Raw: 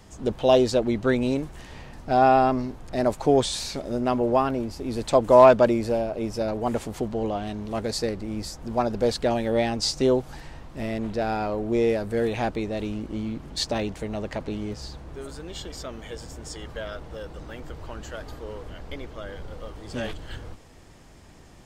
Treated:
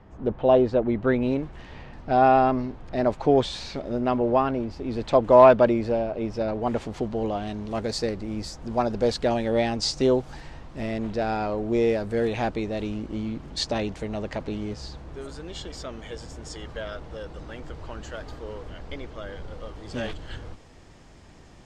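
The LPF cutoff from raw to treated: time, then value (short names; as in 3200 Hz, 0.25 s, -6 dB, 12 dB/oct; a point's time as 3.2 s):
0.74 s 1700 Hz
1.65 s 3700 Hz
6.48 s 3700 Hz
7.38 s 7300 Hz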